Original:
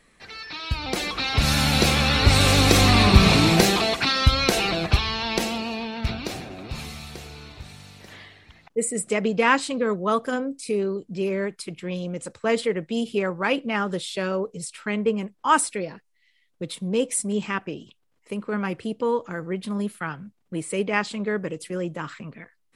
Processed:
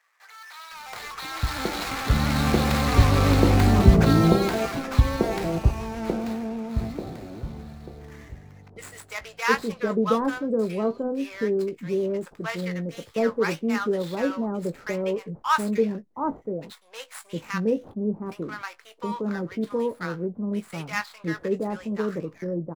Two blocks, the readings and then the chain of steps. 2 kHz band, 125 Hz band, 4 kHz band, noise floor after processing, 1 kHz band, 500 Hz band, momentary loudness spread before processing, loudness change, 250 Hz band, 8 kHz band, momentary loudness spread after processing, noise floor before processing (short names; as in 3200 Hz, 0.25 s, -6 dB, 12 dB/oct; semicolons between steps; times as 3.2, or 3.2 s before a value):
-5.5 dB, +0.5 dB, -11.0 dB, -54 dBFS, -3.0 dB, -0.5 dB, 19 LU, -2.5 dB, +0.5 dB, -10.5 dB, 18 LU, -67 dBFS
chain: median filter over 15 samples; doubler 18 ms -11 dB; bands offset in time highs, lows 0.72 s, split 840 Hz